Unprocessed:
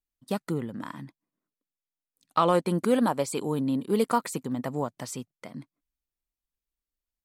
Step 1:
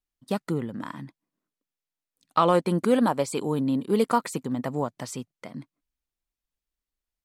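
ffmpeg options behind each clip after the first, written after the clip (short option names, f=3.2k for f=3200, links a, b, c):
-af "highshelf=f=9.7k:g=-6.5,volume=2dB"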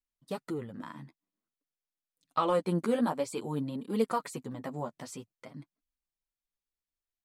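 -af "flanger=delay=3.5:depth=10:regen=6:speed=0.51:shape=triangular,volume=-4.5dB"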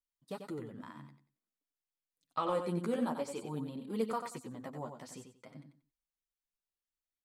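-af "aecho=1:1:92|184|276:0.422|0.097|0.0223,volume=-6dB"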